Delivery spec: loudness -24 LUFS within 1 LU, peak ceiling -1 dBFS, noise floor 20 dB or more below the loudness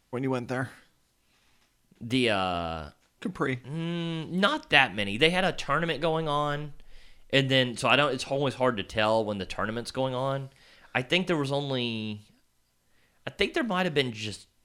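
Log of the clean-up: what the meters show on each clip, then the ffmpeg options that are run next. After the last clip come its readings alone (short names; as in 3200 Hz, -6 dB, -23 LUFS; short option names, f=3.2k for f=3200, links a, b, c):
loudness -27.5 LUFS; peak -3.0 dBFS; loudness target -24.0 LUFS
-> -af "volume=3.5dB,alimiter=limit=-1dB:level=0:latency=1"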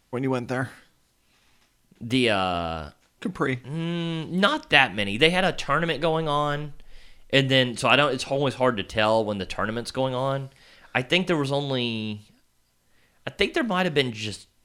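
loudness -24.0 LUFS; peak -1.0 dBFS; noise floor -66 dBFS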